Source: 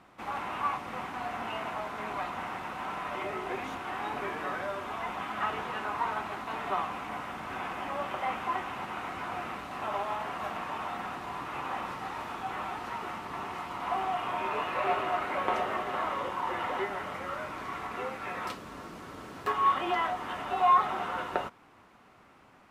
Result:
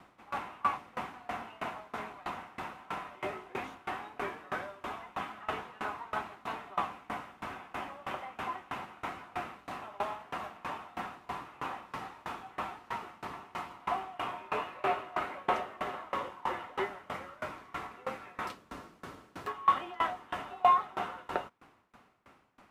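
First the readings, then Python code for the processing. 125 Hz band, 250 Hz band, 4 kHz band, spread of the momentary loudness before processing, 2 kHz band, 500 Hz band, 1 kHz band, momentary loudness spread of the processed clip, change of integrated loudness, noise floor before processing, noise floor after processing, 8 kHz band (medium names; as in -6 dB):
-4.5 dB, -5.0 dB, -4.5 dB, 8 LU, -4.5 dB, -4.0 dB, -4.0 dB, 10 LU, -4.0 dB, -58 dBFS, -62 dBFS, -4.5 dB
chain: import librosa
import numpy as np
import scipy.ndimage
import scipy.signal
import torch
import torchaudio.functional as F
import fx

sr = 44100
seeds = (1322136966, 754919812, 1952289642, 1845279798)

y = fx.tremolo_decay(x, sr, direction='decaying', hz=3.1, depth_db=25)
y = y * librosa.db_to_amplitude(3.0)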